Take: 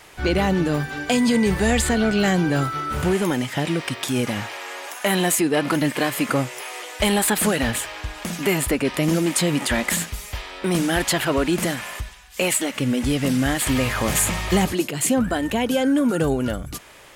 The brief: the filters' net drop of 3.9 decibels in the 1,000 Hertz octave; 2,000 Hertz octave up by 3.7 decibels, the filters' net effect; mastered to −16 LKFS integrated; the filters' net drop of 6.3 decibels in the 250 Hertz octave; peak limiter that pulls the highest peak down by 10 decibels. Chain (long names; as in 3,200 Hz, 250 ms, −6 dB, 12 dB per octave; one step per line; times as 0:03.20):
parametric band 250 Hz −8 dB
parametric band 1,000 Hz −7 dB
parametric band 2,000 Hz +6.5 dB
level +9.5 dB
brickwall limiter −6 dBFS